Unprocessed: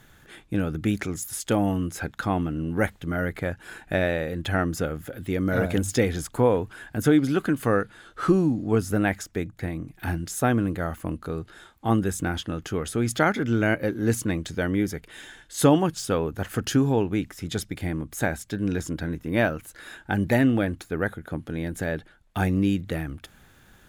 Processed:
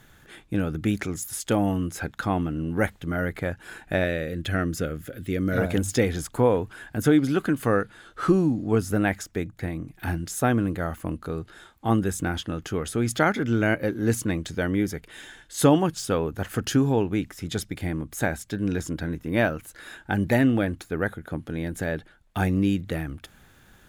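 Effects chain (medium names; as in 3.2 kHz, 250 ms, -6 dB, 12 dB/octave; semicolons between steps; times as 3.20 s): 4.04–5.58 s: peaking EQ 880 Hz -14.5 dB 0.5 oct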